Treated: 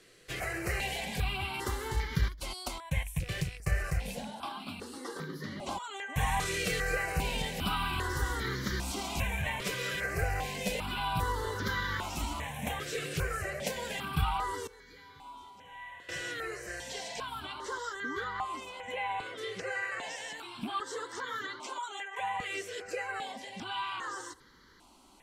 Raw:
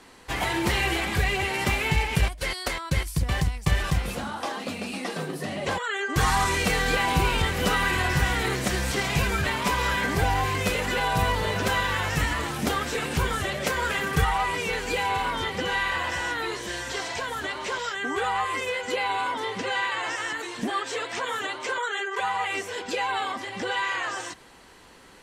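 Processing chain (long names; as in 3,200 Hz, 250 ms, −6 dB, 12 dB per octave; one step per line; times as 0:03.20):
loose part that buzzes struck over −30 dBFS, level −26 dBFS
0:14.67–0:16.09: tuned comb filter 140 Hz, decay 1.9 s, mix 90%
0:18.24–0:19.38: high-shelf EQ 4,400 Hz −8 dB
step-sequenced phaser 2.5 Hz 240–2,600 Hz
level −5.5 dB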